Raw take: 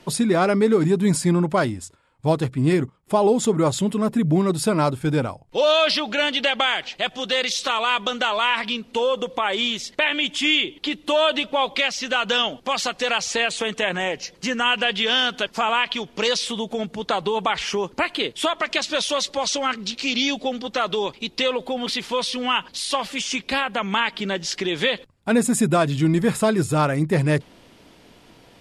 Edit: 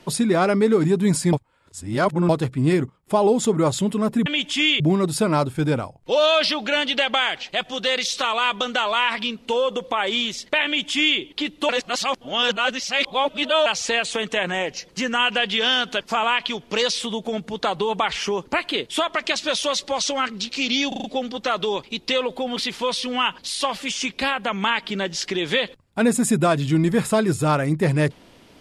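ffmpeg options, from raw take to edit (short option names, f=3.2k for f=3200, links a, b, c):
-filter_complex "[0:a]asplit=11[a][b][c][d][e][f][g][h][i][j][k];[a]atrim=end=1.332[l];[b]atrim=start=1.328:end=2.292,asetpts=PTS-STARTPTS,areverse[m];[c]atrim=start=2.288:end=4.262[n];[d]atrim=start=10.108:end=10.652[o];[e]atrim=start=4.258:end=11.152[p];[f]atrim=start=11.148:end=13.122,asetpts=PTS-STARTPTS,areverse[q];[g]atrim=start=13.118:end=20.382[r];[h]atrim=start=20.338:end=20.382[s];[i]atrim=start=20.338:end=20.382[t];[j]atrim=start=20.338:end=20.382[u];[k]atrim=start=20.338[v];[l][m]acrossfade=d=0.004:c1=hsin:c2=hsin[w];[w][n]acrossfade=d=0.004:c1=hsin:c2=hsin[x];[x][o]acrossfade=d=0.004:c1=hsin:c2=hsin[y];[y][p]acrossfade=d=0.004:c1=hsin:c2=hsin[z];[z][q]acrossfade=d=0.004:c1=hsin:c2=hsin[aa];[aa][r]acrossfade=d=0.004:c1=hsin:c2=hsin[ab];[ab][s]acrossfade=d=0.004:c1=hsin:c2=hsin[ac];[ac][t]acrossfade=d=0.004:c1=hsin:c2=hsin[ad];[ad][u]acrossfade=d=0.004:c1=hsin:c2=hsin[ae];[ae][v]acrossfade=d=0.004:c1=hsin:c2=hsin"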